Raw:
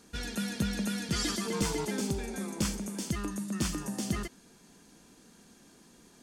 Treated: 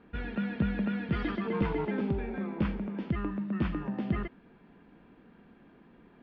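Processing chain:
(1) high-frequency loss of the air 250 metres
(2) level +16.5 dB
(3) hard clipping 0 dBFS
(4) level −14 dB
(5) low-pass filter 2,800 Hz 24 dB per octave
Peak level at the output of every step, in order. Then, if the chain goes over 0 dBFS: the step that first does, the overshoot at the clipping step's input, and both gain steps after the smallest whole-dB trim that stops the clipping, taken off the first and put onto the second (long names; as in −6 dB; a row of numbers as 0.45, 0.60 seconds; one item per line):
−19.5, −3.0, −3.0, −17.0, −17.0 dBFS
no step passes full scale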